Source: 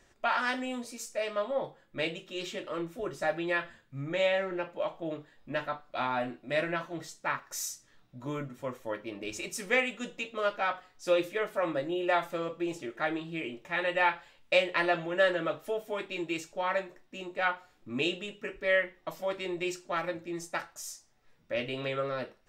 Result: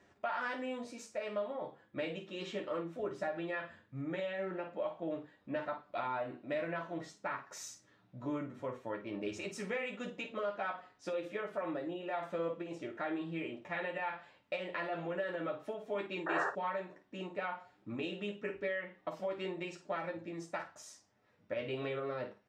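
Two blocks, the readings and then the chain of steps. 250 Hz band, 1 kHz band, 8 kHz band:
-4.5 dB, -7.0 dB, -11.5 dB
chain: high-pass 100 Hz; treble shelf 2.3 kHz -9 dB; peak limiter -24 dBFS, peak gain reduction 9 dB; compression, threshold -35 dBFS, peak gain reduction 7 dB; painted sound noise, 16.26–16.50 s, 380–1900 Hz -35 dBFS; distance through air 55 m; on a send: early reflections 10 ms -4.5 dB, 54 ms -10.5 dB

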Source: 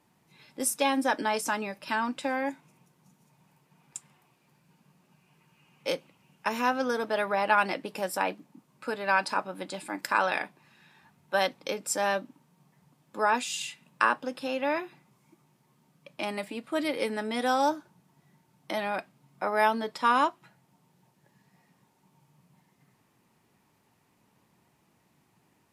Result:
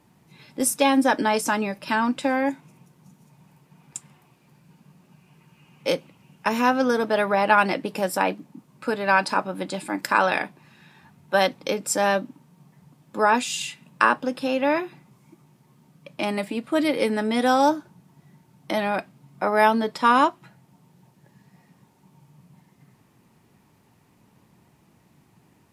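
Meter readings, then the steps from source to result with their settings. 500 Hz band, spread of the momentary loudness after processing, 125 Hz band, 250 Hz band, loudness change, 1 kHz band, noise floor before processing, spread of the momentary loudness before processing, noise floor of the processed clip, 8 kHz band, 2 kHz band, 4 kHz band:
+7.0 dB, 12 LU, +10.5 dB, +9.5 dB, +6.5 dB, +6.0 dB, -69 dBFS, 12 LU, -60 dBFS, +5.0 dB, +5.5 dB, +5.0 dB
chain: bass shelf 310 Hz +7.5 dB; trim +5 dB

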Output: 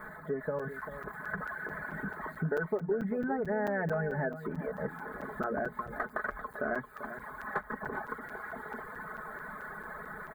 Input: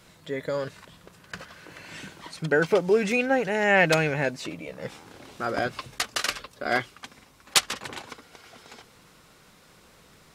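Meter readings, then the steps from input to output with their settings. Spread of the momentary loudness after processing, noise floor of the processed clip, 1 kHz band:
10 LU, -49 dBFS, -6.0 dB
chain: zero-crossing glitches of -18 dBFS; elliptic low-pass 1.7 kHz, stop band 40 dB; hum notches 60/120/180/240 Hz; reverb removal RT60 0.85 s; bass shelf 210 Hz +6.5 dB; comb 4.7 ms, depth 75%; level rider gain up to 3.5 dB; in parallel at +2.5 dB: peak limiter -15.5 dBFS, peak gain reduction 12 dB; on the sum: compression 3:1, threshold -24 dBFS, peak gain reduction 13.5 dB; delay 392 ms -11.5 dB; crackling interface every 0.22 s, samples 256, zero, from 0.59 s; trim -8.5 dB

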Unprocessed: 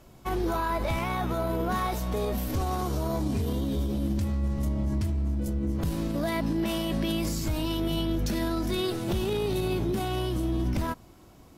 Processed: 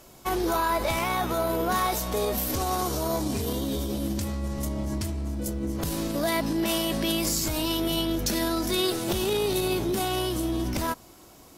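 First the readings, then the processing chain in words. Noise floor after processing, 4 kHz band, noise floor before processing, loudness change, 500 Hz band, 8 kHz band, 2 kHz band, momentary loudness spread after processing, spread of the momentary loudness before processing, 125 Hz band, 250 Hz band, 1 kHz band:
-51 dBFS, +7.0 dB, -52 dBFS, +2.0 dB, +3.0 dB, +10.5 dB, +4.5 dB, 6 LU, 2 LU, -3.5 dB, +0.5 dB, +4.0 dB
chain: tone controls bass -8 dB, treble +7 dB; trim +4 dB

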